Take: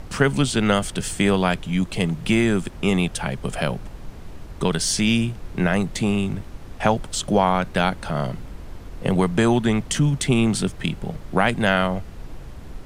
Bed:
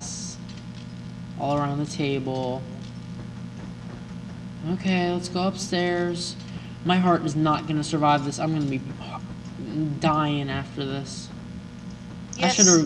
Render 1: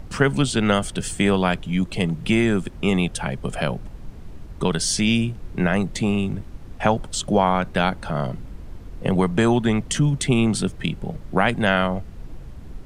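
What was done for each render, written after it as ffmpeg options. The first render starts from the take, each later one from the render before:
-af "afftdn=nr=6:nf=-38"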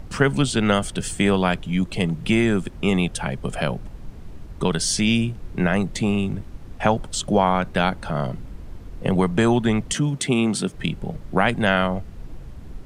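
-filter_complex "[0:a]asettb=1/sr,asplit=3[a][b][c];[a]atrim=end=9.944[d];[b]atrim=start=9.94:end=10.74,asetpts=PTS-STARTPTS,afade=t=in:d=0.004:c=qsin,afade=t=out:st=0.796:d=0.004:c=qsin,highpass=160[e];[c]atrim=start=10.736[f];[d][e]acrossfade=d=0.004:c1=hsin:c2=qsin[g];[g][f]acrossfade=d=0.004:c1=qsin:c2=hsin"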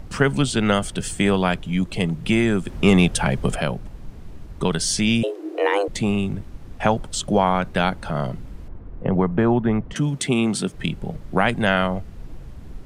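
-filter_complex "[0:a]asettb=1/sr,asplit=3[a][b][c];[a]atrim=end=2.684[d];[b]atrim=start=2.68:end=3.56,asetpts=PTS-STARTPTS,afade=t=in:d=0.004:c=qsin,afade=t=out:st=0.876:d=0.004:c=qsin,acontrast=51[e];[c]atrim=start=3.556[f];[d][e]acrossfade=d=0.004:c1=hsin:c2=qsin[g];[g][f]acrossfade=d=0.004:c1=qsin:c2=hsin,asettb=1/sr,asplit=3[h][i][j];[h]atrim=end=5.234[k];[i]atrim=start=5.23:end=5.88,asetpts=PTS-STARTPTS,afade=t=in:d=0.004:c=qsin,afade=t=out:st=0.646:d=0.004:c=qsin,afreqshift=300[l];[j]atrim=start=5.876[m];[k][l]acrossfade=d=0.004:c1=hsin:c2=qsin[n];[n][m]acrossfade=d=0.004:c1=qsin:c2=hsin,asettb=1/sr,asplit=3[o][p][q];[o]atrim=end=8.684[r];[p]atrim=start=8.68:end=9.96,asetpts=PTS-STARTPTS,afade=t=in:d=0.004:c=qsin,afade=t=out:st=1.276:d=0.004:c=qsin,lowpass=1.5k[s];[q]atrim=start=9.956[t];[r][s]acrossfade=d=0.004:c1=hsin:c2=qsin[u];[u][t]acrossfade=d=0.004:c1=qsin:c2=hsin"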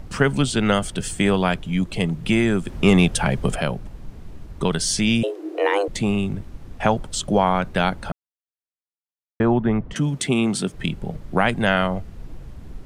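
-filter_complex "[0:a]asplit=3[a][b][c];[a]atrim=end=8.12,asetpts=PTS-STARTPTS,afade=t=out:st=8.116:d=0.004:c=hsin[d];[b]atrim=start=8.12:end=9.4,asetpts=PTS-STARTPTS,volume=0[e];[c]atrim=start=9.4,asetpts=PTS-STARTPTS,afade=t=in:d=0.004:c=hsin[f];[d][e][f]concat=n=3:v=0:a=1"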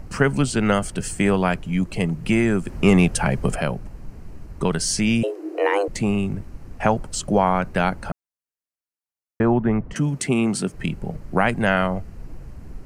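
-af "equalizer=f=3.5k:w=4.8:g=-12.5"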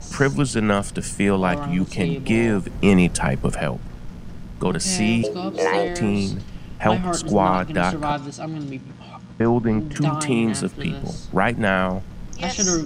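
-filter_complex "[1:a]volume=-4.5dB[a];[0:a][a]amix=inputs=2:normalize=0"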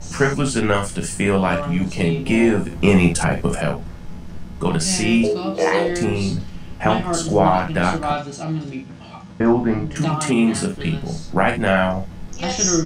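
-filter_complex "[0:a]asplit=2[a][b];[b]adelay=12,volume=-5.5dB[c];[a][c]amix=inputs=2:normalize=0,asplit=2[d][e];[e]aecho=0:1:31|57:0.398|0.398[f];[d][f]amix=inputs=2:normalize=0"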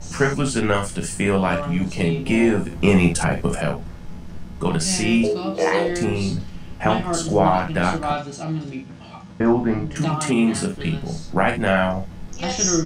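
-af "volume=-1.5dB"

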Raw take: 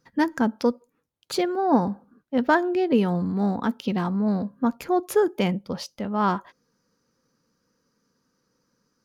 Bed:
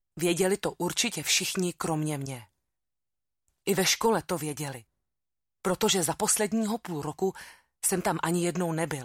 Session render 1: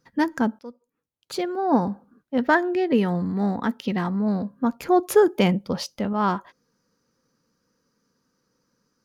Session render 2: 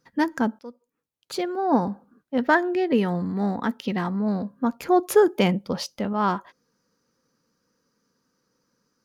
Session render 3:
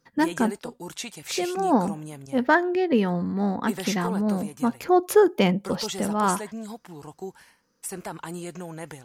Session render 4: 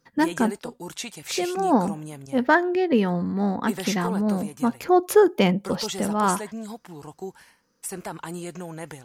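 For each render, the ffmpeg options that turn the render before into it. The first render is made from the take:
-filter_complex "[0:a]asettb=1/sr,asplit=3[a][b][c];[a]atrim=end=2.404[d];[b]atrim=start=2.4:end=4.19,asetpts=PTS-STARTPTS,afade=t=in:d=0.004:c=qsin,afade=t=out:st=1.786:d=0.004:c=qsin,equalizer=f=1.9k:w=4.8:g=8.5[e];[c]atrim=start=4.186[f];[d][e]acrossfade=d=0.004:c1=hsin:c2=qsin[g];[g][f]acrossfade=d=0.004:c1=qsin:c2=hsin,asplit=4[h][i][j][k];[h]atrim=end=0.59,asetpts=PTS-STARTPTS,afade=t=out:st=0.586:d=0.004:c=hsin:silence=0.0707946[l];[i]atrim=start=0.59:end=4.832,asetpts=PTS-STARTPTS,afade=t=in:d=1.18:silence=0.0707946[m];[j]atrim=start=4.828:end=6.132,asetpts=PTS-STARTPTS,volume=4dB[n];[k]atrim=start=6.128[o];[l][m]concat=n=2:v=0:a=1[p];[p][n]acrossfade=d=0.004:c1=hsin:c2=hsin[q];[q][o]acrossfade=d=0.004:c1=hsin:c2=hsin"
-af "lowshelf=f=140:g=-4.5"
-filter_complex "[1:a]volume=-8dB[a];[0:a][a]amix=inputs=2:normalize=0"
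-af "volume=1dB"

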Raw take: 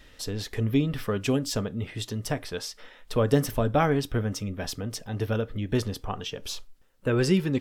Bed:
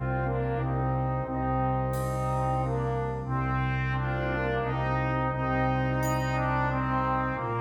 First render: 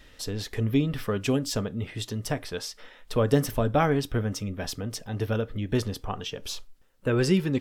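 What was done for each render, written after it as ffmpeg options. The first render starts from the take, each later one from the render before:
-af anull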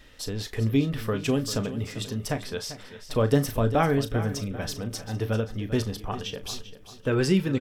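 -filter_complex "[0:a]asplit=2[a][b];[b]adelay=36,volume=-12dB[c];[a][c]amix=inputs=2:normalize=0,aecho=1:1:394|788|1182|1576:0.211|0.0888|0.0373|0.0157"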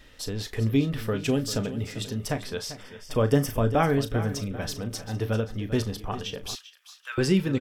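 -filter_complex "[0:a]asettb=1/sr,asplit=3[a][b][c];[a]atrim=end=1.044[d];[b]atrim=start=1.04:end=2.17,asetpts=PTS-STARTPTS,afade=t=in:d=0.004:c=qsin,afade=t=out:st=1.126:d=0.004:c=qsin,bandreject=f=1.1k:w=6.1[e];[c]atrim=start=2.166[f];[d][e]acrossfade=d=0.004:c1=hsin:c2=qsin[g];[g][f]acrossfade=d=0.004:c1=qsin:c2=hsin,asettb=1/sr,asplit=3[h][i][j];[h]atrim=end=2.804[k];[i]atrim=start=2.8:end=3.87,asetpts=PTS-STARTPTS,afade=t=in:d=0.004:c=qsin,afade=t=out:st=1.066:d=0.004:c=qsin,asuperstop=centerf=4000:order=4:qfactor=5.7[l];[j]atrim=start=3.866[m];[k][l]acrossfade=d=0.004:c1=hsin:c2=qsin[n];[n][m]acrossfade=d=0.004:c1=qsin:c2=hsin,asettb=1/sr,asplit=3[o][p][q];[o]atrim=end=6.554[r];[p]atrim=start=6.55:end=7.18,asetpts=PTS-STARTPTS,afade=t=in:d=0.004:c=qsin,afade=t=out:st=0.626:d=0.004:c=qsin,highpass=f=1.3k:w=0.5412,highpass=f=1.3k:w=1.3066[s];[q]atrim=start=7.176[t];[r][s]acrossfade=d=0.004:c1=hsin:c2=qsin[u];[u][t]acrossfade=d=0.004:c1=qsin:c2=hsin"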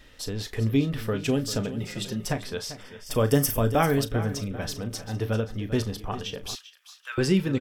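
-filter_complex "[0:a]asettb=1/sr,asplit=3[a][b][c];[a]atrim=end=1.804[d];[b]atrim=start=1.8:end=2.33,asetpts=PTS-STARTPTS,afade=t=in:d=0.004:c=qsin,afade=t=out:st=0.526:d=0.004:c=qsin,aecho=1:1:5.6:0.65,atrim=end_sample=23373[e];[c]atrim=start=2.326[f];[d][e]acrossfade=d=0.004:c1=hsin:c2=qsin[g];[g][f]acrossfade=d=0.004:c1=qsin:c2=hsin,asettb=1/sr,asplit=3[h][i][j];[h]atrim=end=3.064[k];[i]atrim=start=3.06:end=4.04,asetpts=PTS-STARTPTS,afade=t=in:d=0.004:c=qsin,afade=t=out:st=0.976:d=0.004:c=qsin,aemphasis=mode=production:type=50kf[l];[j]atrim=start=4.036[m];[k][l]acrossfade=d=0.004:c1=hsin:c2=qsin[n];[n][m]acrossfade=d=0.004:c1=qsin:c2=hsin"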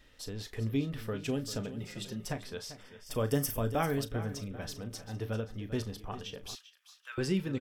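-af "volume=-8.5dB"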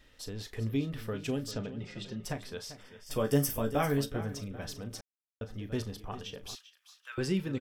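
-filter_complex "[0:a]asettb=1/sr,asplit=3[a][b][c];[a]atrim=end=1.514[d];[b]atrim=start=1.51:end=2.24,asetpts=PTS-STARTPTS,afade=t=in:d=0.004:c=qsin,afade=t=out:st=0.726:d=0.004:c=qsin,lowpass=4.7k[e];[c]atrim=start=2.236[f];[d][e]acrossfade=d=0.004:c1=hsin:c2=qsin[g];[g][f]acrossfade=d=0.004:c1=qsin:c2=hsin,asettb=1/sr,asplit=3[h][i][j];[h]atrim=end=3.054[k];[i]atrim=start=3.05:end=4.21,asetpts=PTS-STARTPTS,afade=t=in:d=0.004:c=qsin,afade=t=out:st=1.156:d=0.004:c=qsin,asplit=2[l][m];[m]adelay=14,volume=-4.5dB[n];[l][n]amix=inputs=2:normalize=0,atrim=end_sample=51156[o];[j]atrim=start=4.206[p];[k][o]acrossfade=d=0.004:c1=hsin:c2=qsin[q];[q][p]acrossfade=d=0.004:c1=qsin:c2=hsin,asplit=3[r][s][t];[r]atrim=end=5.01,asetpts=PTS-STARTPTS,afade=t=out:st=5.006:d=0.004:c=hsin[u];[s]atrim=start=5.01:end=5.41,asetpts=PTS-STARTPTS,volume=0[v];[t]atrim=start=5.41,asetpts=PTS-STARTPTS,afade=t=in:d=0.004:c=hsin[w];[u][v][w]concat=n=3:v=0:a=1"

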